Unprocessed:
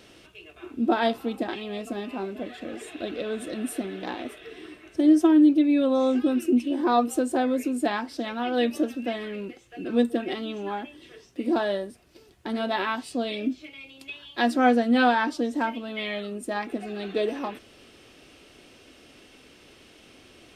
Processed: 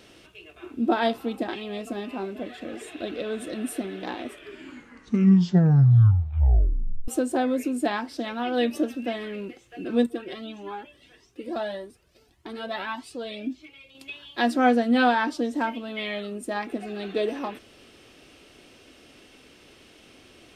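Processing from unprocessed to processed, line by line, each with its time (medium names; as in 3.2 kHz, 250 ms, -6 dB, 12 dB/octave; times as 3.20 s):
4.23 s: tape stop 2.85 s
10.06–13.95 s: Shepard-style flanger rising 1.7 Hz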